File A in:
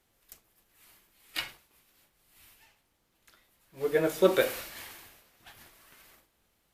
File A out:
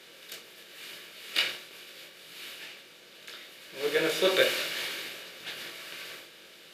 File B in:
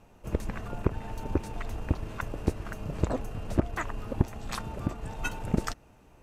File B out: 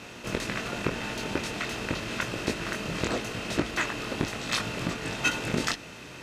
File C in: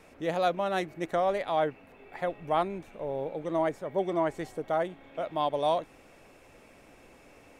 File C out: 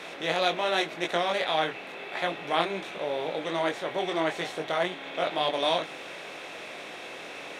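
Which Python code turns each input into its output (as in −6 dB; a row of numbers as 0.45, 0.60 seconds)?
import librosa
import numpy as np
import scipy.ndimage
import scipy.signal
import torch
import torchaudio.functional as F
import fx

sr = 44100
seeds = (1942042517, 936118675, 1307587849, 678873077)

y = fx.bin_compress(x, sr, power=0.6)
y = fx.weighting(y, sr, curve='D')
y = fx.chorus_voices(y, sr, voices=6, hz=0.79, base_ms=21, depth_ms=4.4, mix_pct=40)
y = fx.hum_notches(y, sr, base_hz=50, count=2)
y = librosa.util.normalize(y) * 10.0 ** (-9 / 20.0)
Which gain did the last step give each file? −1.5, +1.5, +0.5 decibels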